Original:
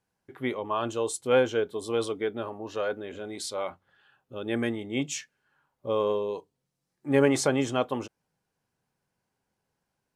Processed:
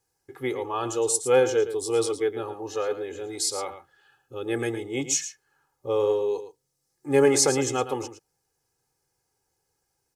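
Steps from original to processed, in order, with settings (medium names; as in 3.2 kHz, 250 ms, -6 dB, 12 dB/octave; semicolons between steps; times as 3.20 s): resonant high shelf 4.4 kHz +7.5 dB, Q 1.5; comb 2.4 ms, depth 74%; delay 112 ms -11.5 dB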